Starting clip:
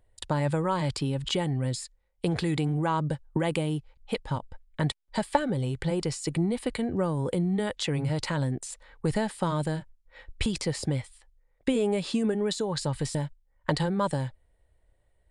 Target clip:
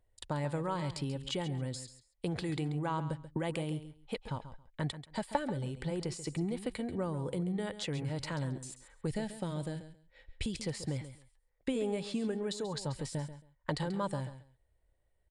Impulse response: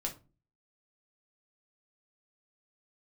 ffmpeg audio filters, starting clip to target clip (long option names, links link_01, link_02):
-filter_complex "[0:a]asettb=1/sr,asplit=3[link_01][link_02][link_03];[link_01]atrim=end=9.074[link_04];[link_02]atrim=start=9.07:end=10.63,asetpts=PTS-STARTPTS,afade=type=in:duration=0.004:curve=qsin,afade=type=out:start_time=1.556:duration=0.004:curve=qsin,equalizer=frequency=1100:width=1.6:gain=-10.5[link_05];[link_03]atrim=start=10.626[link_06];[link_04][link_05]acrossfade=duration=0.004:curve1=hsin:curve2=qsin[link_07];[link_07][link_06]acrossfade=duration=0.004:curve1=qsin:curve2=hsin,aecho=1:1:136|272:0.237|0.0427,volume=-8dB"